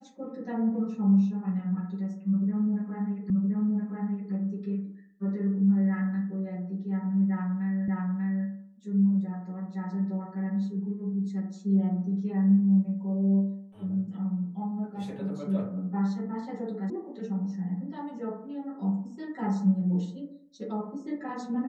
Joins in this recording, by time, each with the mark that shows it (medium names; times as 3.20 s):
3.30 s: repeat of the last 1.02 s
7.88 s: repeat of the last 0.59 s
16.90 s: sound stops dead